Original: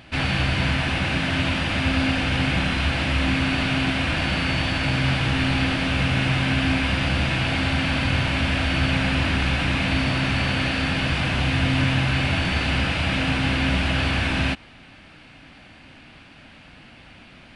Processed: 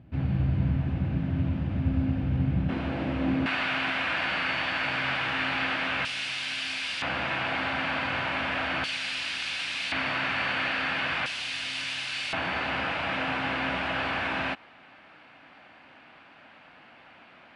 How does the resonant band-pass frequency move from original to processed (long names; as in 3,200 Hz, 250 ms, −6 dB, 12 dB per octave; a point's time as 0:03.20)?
resonant band-pass, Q 0.85
120 Hz
from 0:02.69 350 Hz
from 0:03.46 1,400 Hz
from 0:06.05 5,600 Hz
from 0:07.02 1,100 Hz
from 0:08.84 5,400 Hz
from 0:09.92 1,400 Hz
from 0:11.26 5,800 Hz
from 0:12.33 1,000 Hz